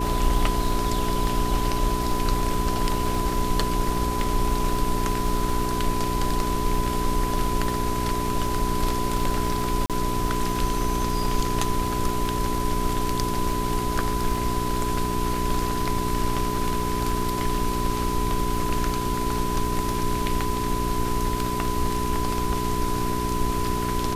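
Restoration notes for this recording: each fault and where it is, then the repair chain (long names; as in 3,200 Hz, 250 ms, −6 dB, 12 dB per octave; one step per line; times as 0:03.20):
surface crackle 31 per second −30 dBFS
mains hum 60 Hz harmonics 7 −29 dBFS
whistle 1,000 Hz −28 dBFS
0:09.86–0:09.90: drop-out 37 ms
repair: click removal
hum removal 60 Hz, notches 7
notch filter 1,000 Hz, Q 30
repair the gap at 0:09.86, 37 ms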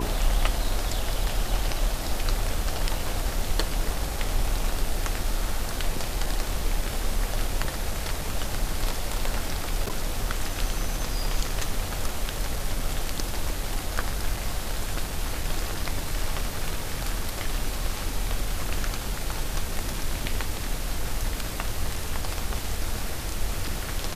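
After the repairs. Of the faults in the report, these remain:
none of them is left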